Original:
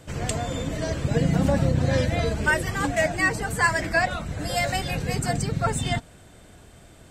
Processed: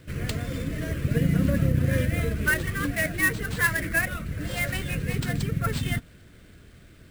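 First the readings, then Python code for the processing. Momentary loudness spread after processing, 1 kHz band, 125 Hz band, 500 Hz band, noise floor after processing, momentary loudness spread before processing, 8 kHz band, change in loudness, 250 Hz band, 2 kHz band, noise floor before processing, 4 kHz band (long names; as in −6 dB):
8 LU, −10.0 dB, −0.5 dB, −6.5 dB, −51 dBFS, 7 LU, −3.5 dB, −1.5 dB, −1.0 dB, −1.0 dB, −50 dBFS, −4.5 dB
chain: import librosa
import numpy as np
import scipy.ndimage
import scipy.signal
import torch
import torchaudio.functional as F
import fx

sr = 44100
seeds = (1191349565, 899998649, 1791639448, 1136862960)

y = fx.fixed_phaser(x, sr, hz=2000.0, stages=4)
y = fx.sample_hold(y, sr, seeds[0], rate_hz=12000.0, jitter_pct=20)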